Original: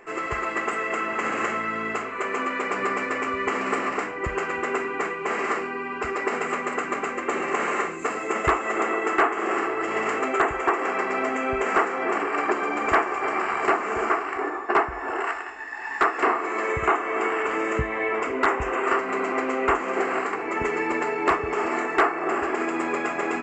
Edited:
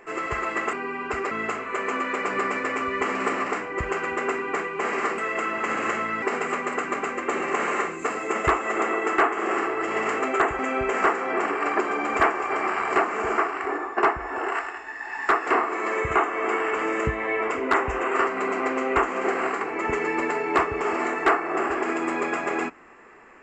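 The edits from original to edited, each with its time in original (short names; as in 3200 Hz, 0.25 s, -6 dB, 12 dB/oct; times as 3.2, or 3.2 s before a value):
0.73–1.77 swap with 5.64–6.22
10.59–11.31 cut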